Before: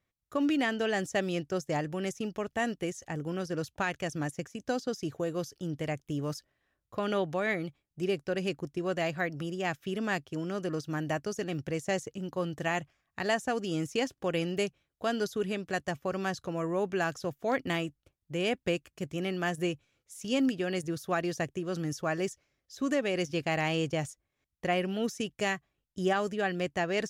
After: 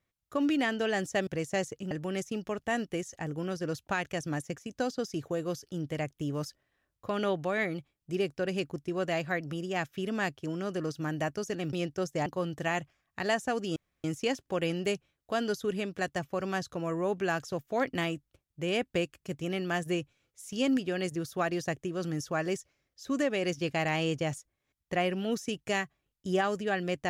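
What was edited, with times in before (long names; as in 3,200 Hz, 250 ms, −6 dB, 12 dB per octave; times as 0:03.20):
0:01.27–0:01.80: swap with 0:11.62–0:12.26
0:13.76: splice in room tone 0.28 s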